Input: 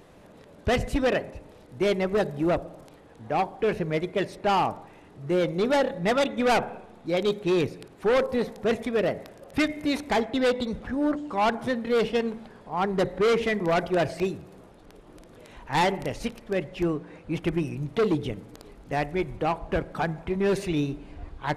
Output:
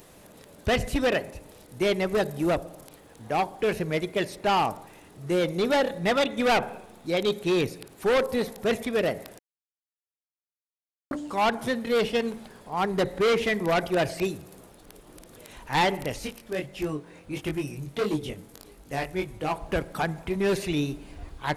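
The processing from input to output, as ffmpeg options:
-filter_complex "[0:a]asplit=3[s0][s1][s2];[s0]afade=t=out:st=16.19:d=0.02[s3];[s1]flanger=delay=19.5:depth=3.2:speed=1.6,afade=t=in:st=16.19:d=0.02,afade=t=out:st=19.5:d=0.02[s4];[s2]afade=t=in:st=19.5:d=0.02[s5];[s3][s4][s5]amix=inputs=3:normalize=0,asplit=3[s6][s7][s8];[s6]atrim=end=9.39,asetpts=PTS-STARTPTS,afade=t=out:st=9.386:d=0.004:c=hsin[s9];[s7]atrim=start=9.39:end=11.11,asetpts=PTS-STARTPTS,volume=0[s10];[s8]atrim=start=11.11,asetpts=PTS-STARTPTS,afade=t=in:d=0.004:c=hsin[s11];[s9][s10][s11]concat=n=3:v=0:a=1,acrossover=split=4400[s12][s13];[s13]acompressor=threshold=0.00251:ratio=4:attack=1:release=60[s14];[s12][s14]amix=inputs=2:normalize=0,aemphasis=mode=production:type=75fm"

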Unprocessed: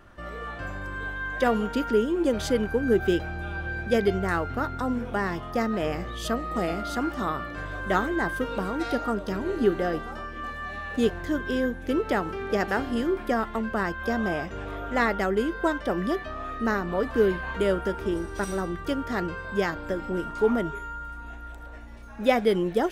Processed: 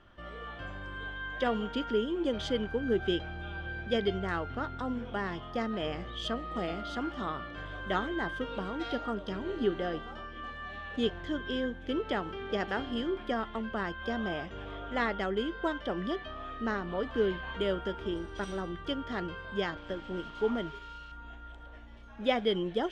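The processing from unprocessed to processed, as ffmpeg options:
-filter_complex "[0:a]asettb=1/sr,asplit=3[s0][s1][s2];[s0]atrim=end=19.774[s3];[s1]atrim=start=19.77:end=21.12,asetpts=PTS-STARTPTS,afade=t=in:d=0.004:c=qsin,afade=t=out:st=1.346:d=0.004:c=qsin,aeval=exprs='sgn(val(0))*max(abs(val(0))-0.00596,0)':c=same[s4];[s2]atrim=start=21.116[s5];[s3][s4]acrossfade=d=0.004:c1=hsin:c2=qsin[s6];[s6][s5]acrossfade=d=0.004:c1=qsin:c2=hsin,lowpass=5100,equalizer=f=3200:w=6.4:g=12.5,volume=0.447"

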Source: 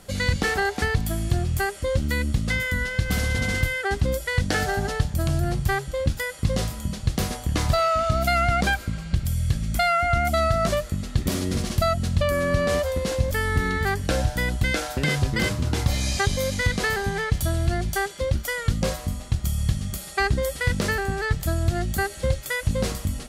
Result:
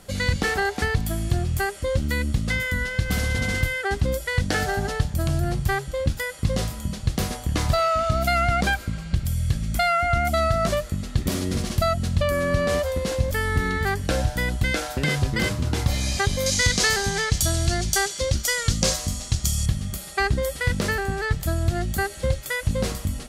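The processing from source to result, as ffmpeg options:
-filter_complex "[0:a]asettb=1/sr,asplit=3[s0][s1][s2];[s0]atrim=end=16.464[s3];[s1]atrim=start=16.46:end=19.66,asetpts=PTS-STARTPTS,afade=t=in:d=0.004:c=qsin,afade=t=out:st=3.196:d=0.004:c=qsin,equalizer=f=6100:t=o:w=1.6:g=14[s4];[s2]atrim=start=19.656[s5];[s3][s4]acrossfade=d=0.004:c1=hsin:c2=qsin[s6];[s6][s5]acrossfade=d=0.004:c1=qsin:c2=hsin"

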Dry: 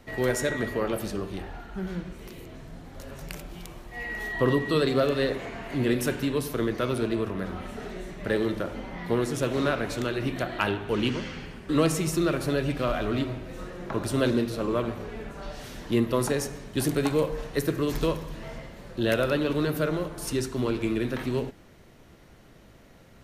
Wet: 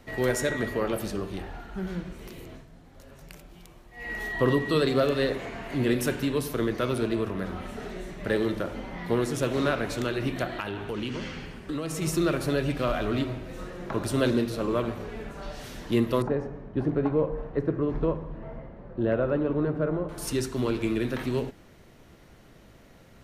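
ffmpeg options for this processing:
-filter_complex "[0:a]asettb=1/sr,asplit=3[s0][s1][s2];[s0]atrim=end=10.594[s3];[s1]atrim=start=10.59:end=12.02,asetpts=PTS-STARTPTS,afade=t=in:d=0.004:c=qsin,afade=t=out:st=1.426:d=0.004:c=qsin,acompressor=threshold=0.0398:ratio=6:attack=3.2:release=140:knee=1:detection=peak[s4];[s2]atrim=start=12.016[s5];[s3][s4]acrossfade=d=0.004:c1=hsin:c2=qsin[s6];[s6][s5]acrossfade=d=0.004:c1=qsin:c2=hsin,asettb=1/sr,asplit=3[s7][s8][s9];[s7]atrim=end=16.224[s10];[s8]atrim=start=16.22:end=20.09,asetpts=PTS-STARTPTS,afade=t=in:d=0.004:c=qsin,afade=t=out:st=3.866:d=0.004:c=qsin,lowpass=1100[s11];[s9]atrim=start=20.086[s12];[s10][s11]acrossfade=d=0.004:c1=hsin:c2=qsin[s13];[s13][s12]acrossfade=d=0.004:c1=qsin:c2=hsin,asplit=3[s14][s15][s16];[s14]atrim=end=2.66,asetpts=PTS-STARTPTS,afade=t=out:st=2.53:d=0.13:silence=0.375837[s17];[s15]atrim=start=2.66:end=3.97,asetpts=PTS-STARTPTS,volume=0.376[s18];[s16]atrim=start=3.97,asetpts=PTS-STARTPTS,afade=t=in:d=0.13:silence=0.375837[s19];[s17][s18][s19]concat=n=3:v=0:a=1"

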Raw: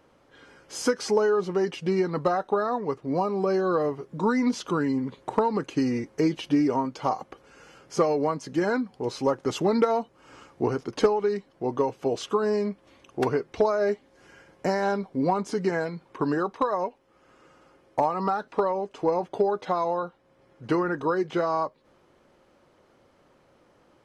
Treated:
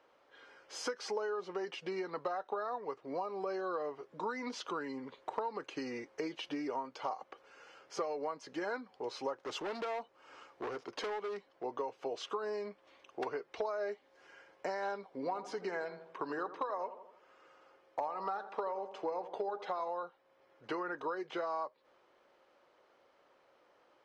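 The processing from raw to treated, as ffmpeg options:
-filter_complex "[0:a]asettb=1/sr,asplit=3[s0][s1][s2];[s0]atrim=end=9.334[s3];[s1]atrim=start=9.33:end=11.64,asetpts=PTS-STARTPTS,afade=t=in:d=0.004:c=qsin,afade=t=out:st=2.306:d=0.004:c=qsin,asoftclip=type=hard:threshold=0.0562[s4];[s2]atrim=start=11.636[s5];[s3][s4]acrossfade=d=0.004:c1=hsin:c2=qsin[s6];[s6][s5]acrossfade=d=0.004:c1=qsin:c2=hsin,asettb=1/sr,asplit=3[s7][s8][s9];[s7]atrim=end=15.054[s10];[s8]atrim=start=15.05:end=19.89,asetpts=PTS-STARTPTS,afade=t=in:d=0.004:c=qsin,afade=t=out:st=4.836:d=0.004:c=qsin,asplit=2[s11][s12];[s12]adelay=82,lowpass=f=1500:p=1,volume=0.224,asplit=2[s13][s14];[s14]adelay=82,lowpass=f=1500:p=1,volume=0.54,asplit=2[s15][s16];[s16]adelay=82,lowpass=f=1500:p=1,volume=0.54,asplit=2[s17][s18];[s18]adelay=82,lowpass=f=1500:p=1,volume=0.54,asplit=2[s19][s20];[s20]adelay=82,lowpass=f=1500:p=1,volume=0.54,asplit=2[s21][s22];[s22]adelay=82,lowpass=f=1500:p=1,volume=0.54[s23];[s11][s13][s15][s17][s19][s21][s23]amix=inputs=7:normalize=0,atrim=end_sample=213444[s24];[s9]atrim=start=19.886[s25];[s10][s24]acrossfade=d=0.004:c1=hsin:c2=qsin[s26];[s26][s25]acrossfade=d=0.004:c1=qsin:c2=hsin,acrossover=split=390 5800:gain=0.112 1 0.2[s27][s28][s29];[s27][s28][s29]amix=inputs=3:normalize=0,acompressor=threshold=0.0251:ratio=2.5,volume=0.596"

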